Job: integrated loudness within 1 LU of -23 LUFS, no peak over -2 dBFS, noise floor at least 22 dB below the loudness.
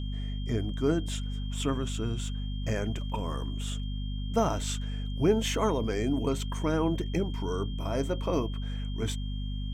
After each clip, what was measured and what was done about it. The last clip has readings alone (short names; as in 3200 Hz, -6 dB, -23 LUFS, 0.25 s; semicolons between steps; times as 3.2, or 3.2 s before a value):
hum 50 Hz; harmonics up to 250 Hz; hum level -31 dBFS; steady tone 3200 Hz; tone level -47 dBFS; loudness -31.0 LUFS; peak -11.5 dBFS; loudness target -23.0 LUFS
-> notches 50/100/150/200/250 Hz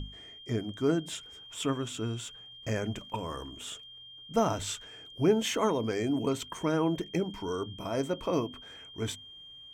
hum none; steady tone 3200 Hz; tone level -47 dBFS
-> notch 3200 Hz, Q 30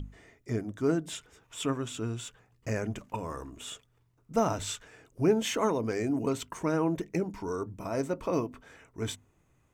steady tone none; loudness -32.0 LUFS; peak -13.0 dBFS; loudness target -23.0 LUFS
-> gain +9 dB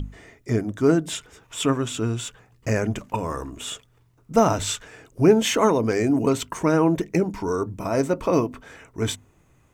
loudness -23.0 LUFS; peak -4.0 dBFS; noise floor -60 dBFS